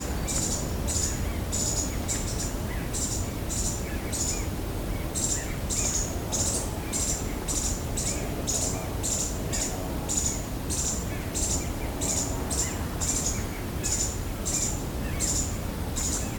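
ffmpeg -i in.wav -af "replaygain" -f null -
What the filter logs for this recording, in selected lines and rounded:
track_gain = +14.5 dB
track_peak = 0.167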